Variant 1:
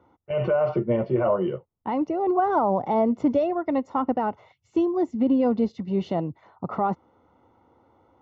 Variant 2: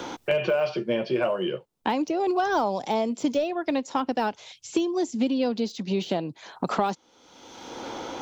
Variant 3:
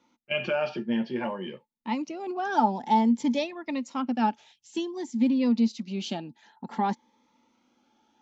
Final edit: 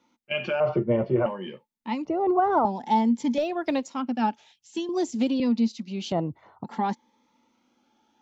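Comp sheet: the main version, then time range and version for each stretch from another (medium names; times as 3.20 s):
3
0.60–1.26 s: from 1
2.05–2.65 s: from 1
3.38–3.88 s: from 2
4.89–5.40 s: from 2
6.12–6.64 s: from 1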